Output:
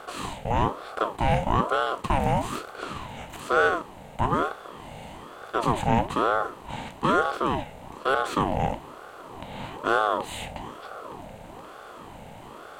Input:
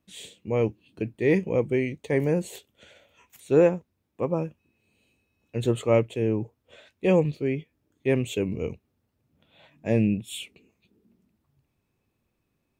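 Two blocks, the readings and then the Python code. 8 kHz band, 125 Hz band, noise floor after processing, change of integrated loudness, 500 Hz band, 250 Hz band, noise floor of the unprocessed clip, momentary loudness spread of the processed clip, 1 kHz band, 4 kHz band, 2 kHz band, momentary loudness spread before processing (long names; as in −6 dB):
+1.5 dB, −2.0 dB, −44 dBFS, −0.5 dB, −3.5 dB, −4.0 dB, −76 dBFS, 20 LU, +16.5 dB, +5.5 dB, +7.5 dB, 15 LU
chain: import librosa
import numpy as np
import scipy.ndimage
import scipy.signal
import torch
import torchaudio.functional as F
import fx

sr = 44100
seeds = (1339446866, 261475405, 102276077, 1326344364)

y = fx.bin_compress(x, sr, power=0.4)
y = fx.ring_lfo(y, sr, carrier_hz=650.0, swing_pct=50, hz=1.1)
y = y * 10.0 ** (-2.5 / 20.0)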